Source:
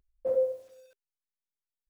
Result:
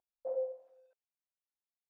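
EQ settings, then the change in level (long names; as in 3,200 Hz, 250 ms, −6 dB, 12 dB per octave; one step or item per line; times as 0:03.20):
resonant band-pass 760 Hz, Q 3.4
0.0 dB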